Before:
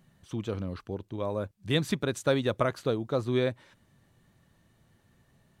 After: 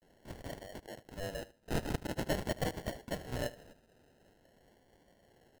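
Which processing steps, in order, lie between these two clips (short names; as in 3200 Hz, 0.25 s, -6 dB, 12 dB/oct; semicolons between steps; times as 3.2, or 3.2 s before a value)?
HPF 610 Hz 24 dB/oct; high shelf 2500 Hz +11.5 dB; in parallel at +3 dB: compressor, threshold -44 dBFS, peak gain reduction 22.5 dB; on the sum: frequency shift +78 Hz; sample-and-hold 37×; vibrato 0.45 Hz 86 cents; on a send: feedback echo 76 ms, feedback 24%, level -17.5 dB; on the sum: gain -7 dB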